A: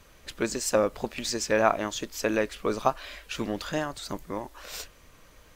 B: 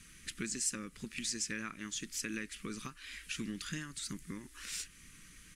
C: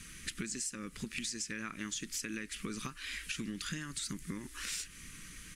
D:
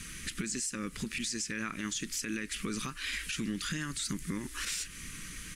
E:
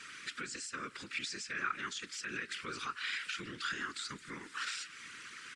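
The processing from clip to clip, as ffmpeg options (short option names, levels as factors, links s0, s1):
-af "tiltshelf=f=1100:g=-3,acompressor=threshold=0.00891:ratio=2,firequalizer=gain_entry='entry(110,0);entry(170,8);entry(330,-1);entry(670,-29);entry(1200,-6);entry(1900,2);entry(3900,-2);entry(10000,9);entry(14000,-12)':delay=0.05:min_phase=1,volume=0.841"
-af "acompressor=threshold=0.00794:ratio=10,volume=2.11"
-af "alimiter=level_in=2.37:limit=0.0631:level=0:latency=1:release=22,volume=0.422,volume=2"
-filter_complex "[0:a]highpass=430,equalizer=f=620:t=q:w=4:g=-10,equalizer=f=1400:t=q:w=4:g=9,equalizer=f=6300:t=q:w=4:g=-8,lowpass=f=7000:w=0.5412,lowpass=f=7000:w=1.3066,afftfilt=real='hypot(re,im)*cos(2*PI*random(0))':imag='hypot(re,im)*sin(2*PI*random(1))':win_size=512:overlap=0.75,asplit=2[s0][s1];[s1]adelay=169.1,volume=0.0794,highshelf=f=4000:g=-3.8[s2];[s0][s2]amix=inputs=2:normalize=0,volume=1.58"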